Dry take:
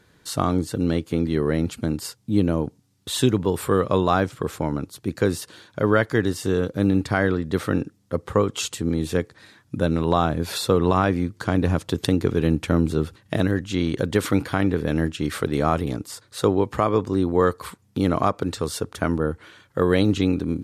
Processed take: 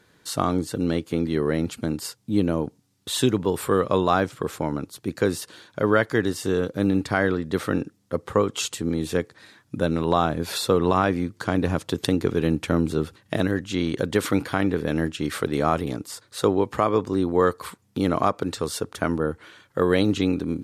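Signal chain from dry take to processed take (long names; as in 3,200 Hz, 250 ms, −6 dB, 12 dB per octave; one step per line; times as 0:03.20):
low-shelf EQ 110 Hz −9 dB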